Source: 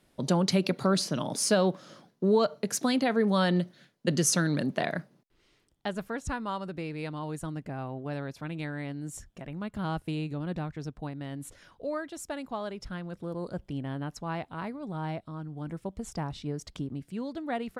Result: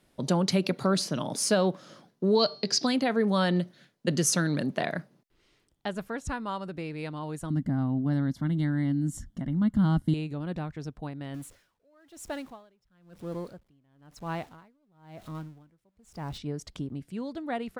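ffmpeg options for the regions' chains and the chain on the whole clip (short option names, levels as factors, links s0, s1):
-filter_complex "[0:a]asettb=1/sr,asplit=3[s0][s1][s2];[s0]atrim=end=2.354[s3];[s1]atrim=start=2.35:end=2.87,asetpts=PTS-STARTPTS,afade=t=in:d=0.004:c=qsin,afade=t=out:st=0.516:d=0.004:c=qsin,lowpass=f=4800:t=q:w=11,equalizer=f=1400:w=4.4:g=-3.5,bandreject=f=391:t=h:w=4,bandreject=f=782:t=h:w=4,bandreject=f=1173:t=h:w=4,bandreject=f=1564:t=h:w=4,bandreject=f=1955:t=h:w=4,bandreject=f=2346:t=h:w=4,bandreject=f=2737:t=h:w=4,bandreject=f=3128:t=h:w=4,bandreject=f=3519:t=h:w=4,bandreject=f=3910:t=h:w=4,bandreject=f=4301:t=h:w=4,bandreject=f=4692:t=h:w=4,bandreject=f=5083:t=h:w=4,bandreject=f=5474:t=h:w=4,bandreject=f=5865:t=h:w=4[s4];[s2]atrim=start=2.866[s5];[s3][s4]acrossfade=d=0.004:c1=hsin:c2=qsin[s6];[s6][s5]acrossfade=d=0.004:c1=qsin:c2=hsin,asettb=1/sr,asplit=3[s7][s8][s9];[s7]atrim=end=7.504[s10];[s8]atrim=start=7.5:end=10.14,asetpts=PTS-STARTPTS,afade=t=in:d=0.004:c=qsin,afade=t=out:st=2.636:d=0.004:c=qsin,asuperstop=centerf=2500:order=8:qfactor=4.2,lowshelf=f=330:t=q:w=3:g=8[s11];[s9]atrim=start=10.136[s12];[s10][s11]acrossfade=d=0.004:c1=hsin:c2=qsin[s13];[s13][s12]acrossfade=d=0.004:c1=qsin:c2=hsin,asettb=1/sr,asplit=3[s14][s15][s16];[s14]atrim=end=11.344[s17];[s15]atrim=start=11.34:end=16.38,asetpts=PTS-STARTPTS,afade=t=in:d=0.004:c=qsin,afade=t=out:st=5.036:d=0.004:c=qsin,aeval=exprs='val(0)+0.5*0.00562*sgn(val(0))':c=same,aeval=exprs='val(0)*pow(10,-33*(0.5-0.5*cos(2*PI*1*n/s))/20)':c=same[s18];[s16]atrim=start=16.376[s19];[s17][s18]acrossfade=d=0.004:c1=hsin:c2=qsin[s20];[s20][s19]acrossfade=d=0.004:c1=qsin:c2=hsin"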